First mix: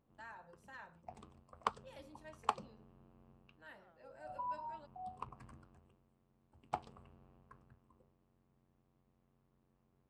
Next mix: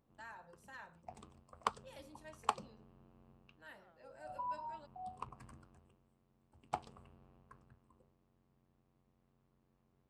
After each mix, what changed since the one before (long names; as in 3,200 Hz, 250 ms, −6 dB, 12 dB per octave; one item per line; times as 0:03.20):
master: add high-shelf EQ 5,500 Hz +8 dB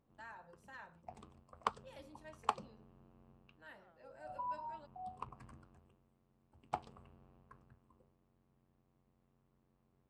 master: add high-shelf EQ 5,500 Hz −8 dB